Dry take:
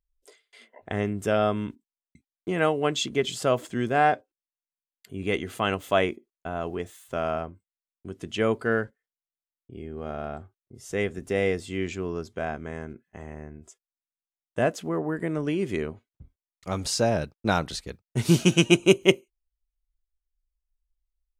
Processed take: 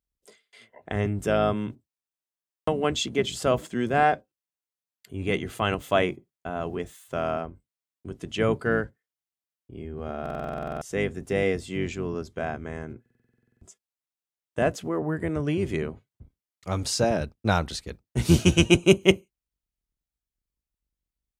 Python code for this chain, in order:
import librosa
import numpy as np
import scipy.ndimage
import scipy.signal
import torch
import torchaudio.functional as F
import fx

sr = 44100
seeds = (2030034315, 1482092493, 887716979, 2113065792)

y = fx.octave_divider(x, sr, octaves=1, level_db=-4.0)
y = scipy.signal.sosfilt(scipy.signal.butter(2, 54.0, 'highpass', fs=sr, output='sos'), y)
y = fx.buffer_glitch(y, sr, at_s=(2.07, 10.21, 13.01), block=2048, repeats=12)